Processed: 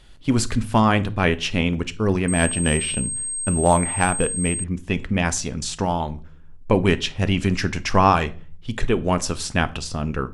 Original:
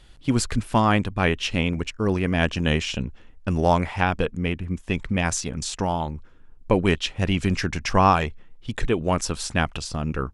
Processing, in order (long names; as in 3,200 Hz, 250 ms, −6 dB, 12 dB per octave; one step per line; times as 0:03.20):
convolution reverb RT60 0.40 s, pre-delay 5 ms, DRR 12 dB
0:02.28–0:04.64: switching amplifier with a slow clock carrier 8,400 Hz
level +1.5 dB